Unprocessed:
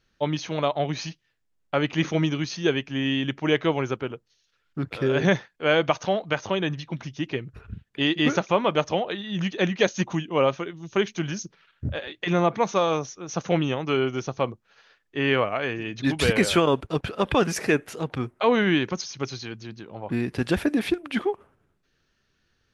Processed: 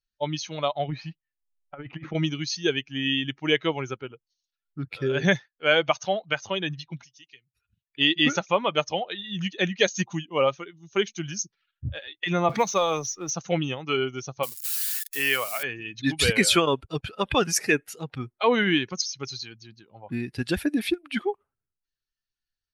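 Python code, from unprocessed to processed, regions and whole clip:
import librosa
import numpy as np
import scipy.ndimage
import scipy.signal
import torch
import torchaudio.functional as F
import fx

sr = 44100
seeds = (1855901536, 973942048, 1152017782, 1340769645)

y = fx.chain(x, sr, fx.lowpass(hz=1900.0, slope=12),
    fx.over_compress(threshold_db=-27.0, ratio=-0.5), at=(0.88, 2.15))
y = fx.chain(y, sr, fx.pre_emphasis(coefficient=0.9),
    fx.band_squash(depth_pct=40), at=(7.04, 7.87))
y = fx.chain(y, sr, fx.law_mismatch(coded='mu'),
    fx.band_squash(depth_pct=70), at=(12.49, 13.31))
y = fx.chain(y, sr, fx.crossing_spikes(level_db=-24.5),
    fx.low_shelf(hz=370.0, db=-8.5),
    fx.band_squash(depth_pct=40), at=(14.43, 15.63))
y = fx.bin_expand(y, sr, power=1.5)
y = fx.high_shelf(y, sr, hz=2000.0, db=10.0)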